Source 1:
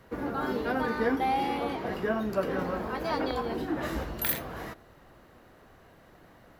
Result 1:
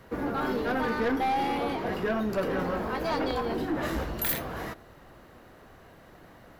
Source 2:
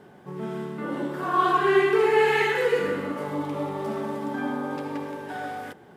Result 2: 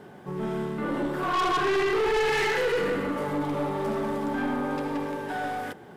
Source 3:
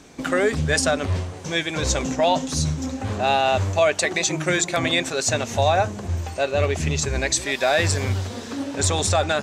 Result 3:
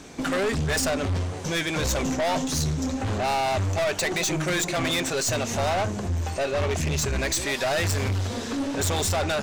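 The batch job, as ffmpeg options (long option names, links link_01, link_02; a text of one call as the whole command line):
ffmpeg -i in.wav -af "asoftclip=type=tanh:threshold=-25.5dB,aeval=exprs='0.0531*(cos(1*acos(clip(val(0)/0.0531,-1,1)))-cos(1*PI/2))+0.00473*(cos(2*acos(clip(val(0)/0.0531,-1,1)))-cos(2*PI/2))':channel_layout=same,volume=3.5dB" out.wav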